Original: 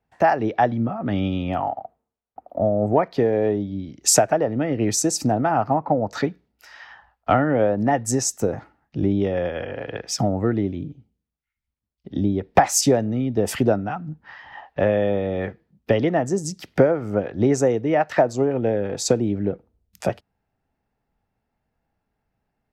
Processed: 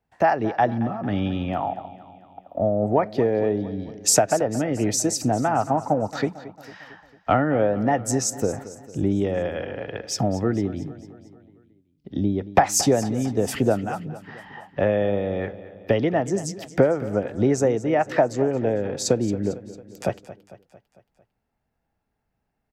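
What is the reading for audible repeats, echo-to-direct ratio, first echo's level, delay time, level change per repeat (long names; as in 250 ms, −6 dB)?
4, −14.5 dB, −16.0 dB, 225 ms, −5.0 dB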